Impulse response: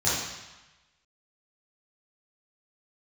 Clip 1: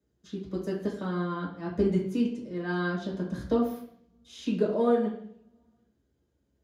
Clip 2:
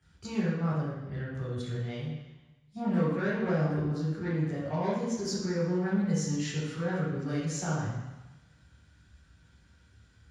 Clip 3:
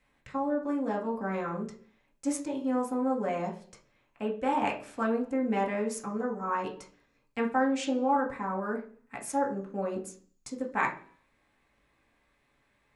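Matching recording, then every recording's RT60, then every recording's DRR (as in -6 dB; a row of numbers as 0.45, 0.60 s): 2; 0.65, 1.1, 0.45 s; -4.5, -10.0, -1.5 dB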